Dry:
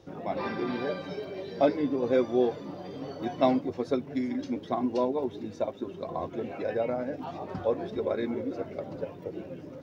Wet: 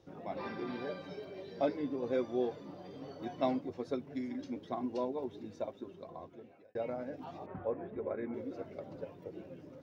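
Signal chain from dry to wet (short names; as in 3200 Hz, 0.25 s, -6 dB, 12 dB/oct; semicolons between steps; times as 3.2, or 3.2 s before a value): 5.67–6.75 fade out; 7.46–8.34 LPF 2300 Hz 24 dB/oct; gain -8.5 dB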